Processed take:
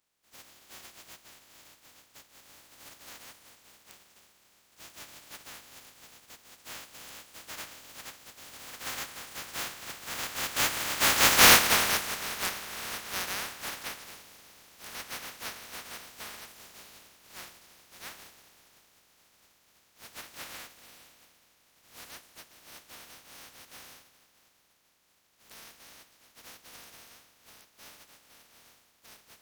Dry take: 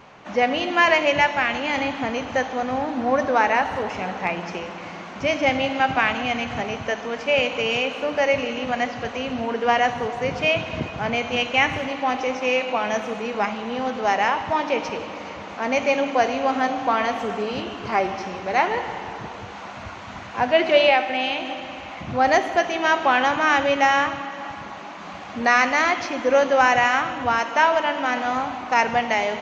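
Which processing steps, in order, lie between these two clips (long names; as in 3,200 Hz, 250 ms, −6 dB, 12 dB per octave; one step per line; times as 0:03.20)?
compressing power law on the bin magnitudes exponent 0.1
source passing by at 0:11.40, 29 m/s, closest 4.9 metres
dynamic equaliser 1,500 Hz, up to +5 dB, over −57 dBFS, Q 0.81
level +5 dB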